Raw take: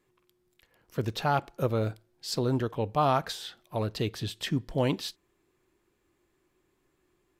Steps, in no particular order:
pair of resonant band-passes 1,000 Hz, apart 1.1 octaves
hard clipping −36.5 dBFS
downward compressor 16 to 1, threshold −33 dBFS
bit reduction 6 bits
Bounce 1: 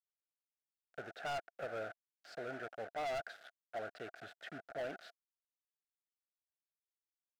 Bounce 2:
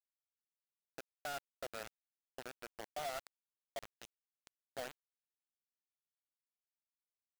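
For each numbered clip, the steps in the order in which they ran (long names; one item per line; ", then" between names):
bit reduction, then pair of resonant band-passes, then hard clipping, then downward compressor
pair of resonant band-passes, then downward compressor, then bit reduction, then hard clipping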